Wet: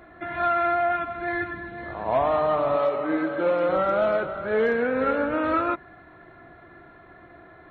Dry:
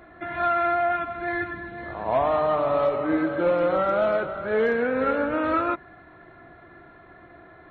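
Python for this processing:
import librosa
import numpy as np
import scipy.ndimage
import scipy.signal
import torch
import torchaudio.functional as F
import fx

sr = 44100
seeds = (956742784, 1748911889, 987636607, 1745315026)

y = fx.highpass(x, sr, hz=240.0, slope=6, at=(2.76, 3.69))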